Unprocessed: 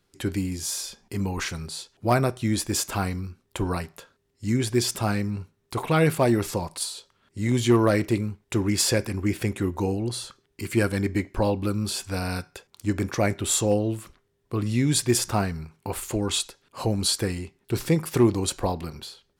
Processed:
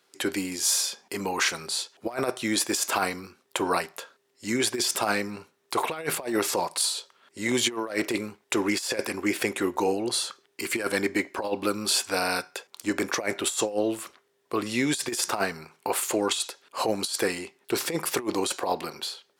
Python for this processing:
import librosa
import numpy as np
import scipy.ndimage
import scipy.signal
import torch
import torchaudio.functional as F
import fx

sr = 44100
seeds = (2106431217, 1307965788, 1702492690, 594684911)

y = scipy.signal.sosfilt(scipy.signal.butter(2, 440.0, 'highpass', fs=sr, output='sos'), x)
y = fx.high_shelf(y, sr, hz=11000.0, db=-2.0)
y = fx.over_compress(y, sr, threshold_db=-29.0, ratio=-0.5)
y = y * 10.0 ** (4.5 / 20.0)